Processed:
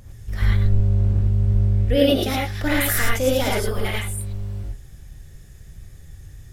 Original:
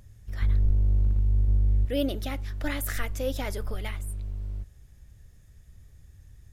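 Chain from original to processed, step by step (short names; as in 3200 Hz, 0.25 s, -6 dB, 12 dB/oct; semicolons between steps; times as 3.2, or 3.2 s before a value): 0.63–2.1 high shelf 10000 Hz -8 dB; non-linear reverb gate 0.13 s rising, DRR -3.5 dB; gain +7 dB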